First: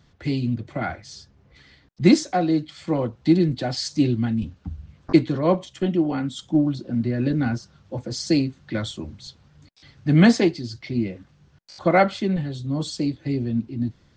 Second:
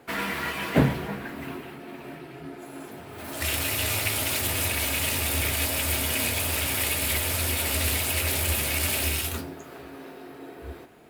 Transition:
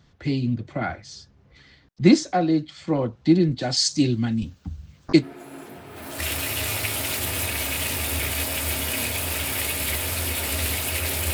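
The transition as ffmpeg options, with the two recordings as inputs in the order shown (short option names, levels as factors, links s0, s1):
-filter_complex "[0:a]asplit=3[s0][s1][s2];[s0]afade=t=out:st=3.6:d=0.02[s3];[s1]aemphasis=mode=production:type=75fm,afade=t=in:st=3.6:d=0.02,afade=t=out:st=5.25:d=0.02[s4];[s2]afade=t=in:st=5.25:d=0.02[s5];[s3][s4][s5]amix=inputs=3:normalize=0,apad=whole_dur=11.33,atrim=end=11.33,atrim=end=5.25,asetpts=PTS-STARTPTS[s6];[1:a]atrim=start=2.41:end=8.55,asetpts=PTS-STARTPTS[s7];[s6][s7]acrossfade=d=0.06:c1=tri:c2=tri"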